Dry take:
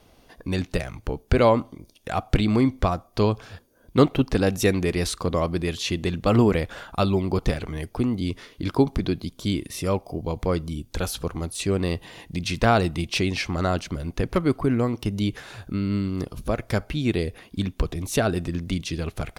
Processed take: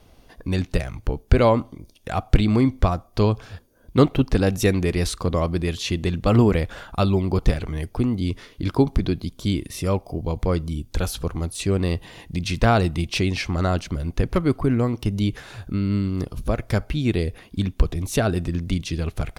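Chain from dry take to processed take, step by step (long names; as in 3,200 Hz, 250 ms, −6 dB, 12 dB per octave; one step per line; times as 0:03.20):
low-shelf EQ 110 Hz +8 dB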